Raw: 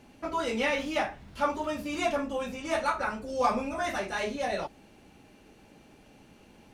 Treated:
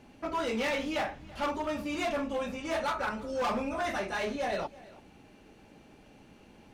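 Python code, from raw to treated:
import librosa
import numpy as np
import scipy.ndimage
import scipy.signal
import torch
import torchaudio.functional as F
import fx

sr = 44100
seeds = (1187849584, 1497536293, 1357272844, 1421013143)

p1 = fx.high_shelf(x, sr, hz=6000.0, db=-6.0)
p2 = np.clip(10.0 ** (27.0 / 20.0) * p1, -1.0, 1.0) / 10.0 ** (27.0 / 20.0)
y = p2 + fx.echo_single(p2, sr, ms=333, db=-20.5, dry=0)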